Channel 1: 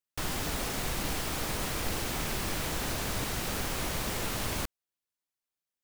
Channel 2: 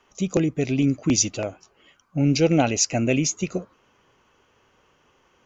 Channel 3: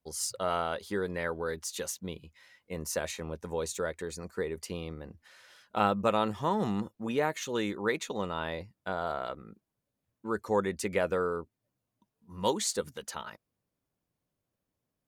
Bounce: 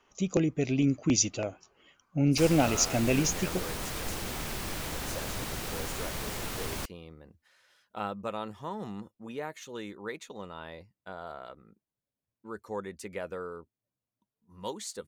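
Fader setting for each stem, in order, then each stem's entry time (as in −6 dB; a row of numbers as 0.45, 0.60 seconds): −3.0, −5.0, −8.5 decibels; 2.20, 0.00, 2.20 seconds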